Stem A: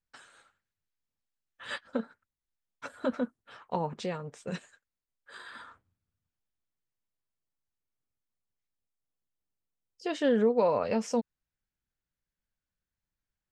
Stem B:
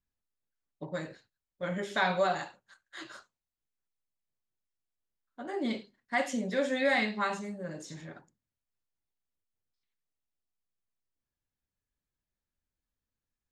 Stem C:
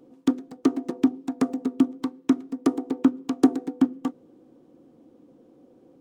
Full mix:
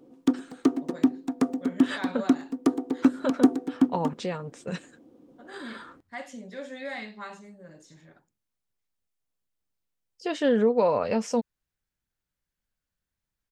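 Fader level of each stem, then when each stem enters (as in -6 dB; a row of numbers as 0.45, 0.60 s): +3.0, -9.0, -1.0 dB; 0.20, 0.00, 0.00 s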